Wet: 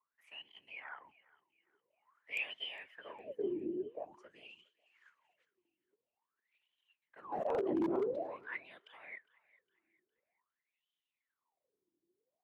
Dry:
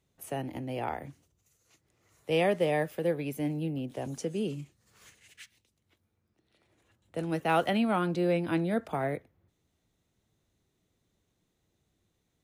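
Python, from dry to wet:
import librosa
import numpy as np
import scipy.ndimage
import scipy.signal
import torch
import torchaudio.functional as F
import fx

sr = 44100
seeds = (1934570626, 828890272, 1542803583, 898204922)

y = fx.peak_eq(x, sr, hz=1000.0, db=10.0, octaves=0.23)
y = fx.whisperise(y, sr, seeds[0])
y = fx.wah_lfo(y, sr, hz=0.48, low_hz=330.0, high_hz=3100.0, q=17.0)
y = 10.0 ** (-34.0 / 20.0) * (np.abs((y / 10.0 ** (-34.0 / 20.0) + 3.0) % 4.0 - 2.0) - 1.0)
y = fx.echo_thinned(y, sr, ms=408, feedback_pct=40, hz=920.0, wet_db=-20.5)
y = fx.pre_swell(y, sr, db_per_s=21.0, at=(7.32, 8.3))
y = y * 10.0 ** (6.5 / 20.0)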